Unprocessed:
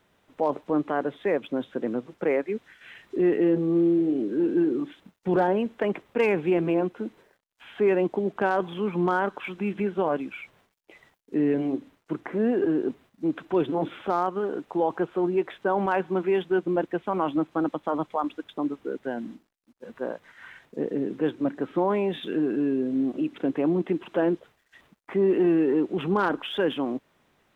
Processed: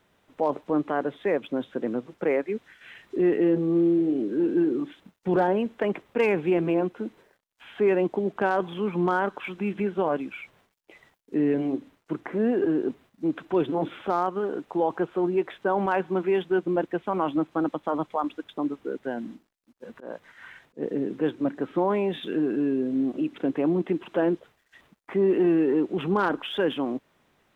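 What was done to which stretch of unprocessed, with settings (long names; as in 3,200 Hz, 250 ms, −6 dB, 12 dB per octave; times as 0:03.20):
0:19.93–0:20.83: volume swells 152 ms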